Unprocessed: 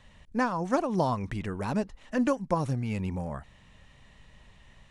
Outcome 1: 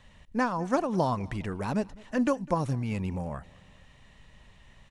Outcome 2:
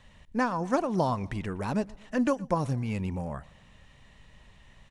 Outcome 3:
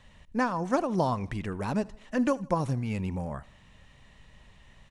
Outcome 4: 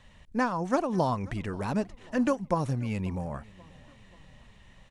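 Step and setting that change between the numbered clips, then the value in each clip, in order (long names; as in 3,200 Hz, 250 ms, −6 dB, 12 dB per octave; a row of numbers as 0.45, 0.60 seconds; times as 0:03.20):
repeating echo, delay time: 204, 119, 79, 536 milliseconds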